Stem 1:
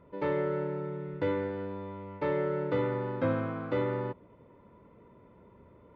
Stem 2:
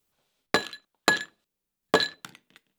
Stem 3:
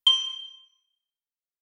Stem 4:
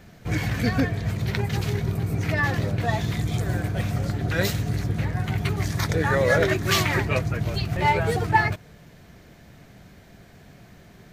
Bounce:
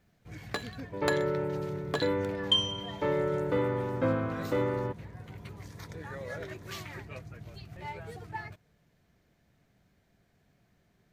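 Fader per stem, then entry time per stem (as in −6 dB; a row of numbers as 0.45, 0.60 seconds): +1.0, −11.5, −6.0, −20.0 decibels; 0.80, 0.00, 2.45, 0.00 seconds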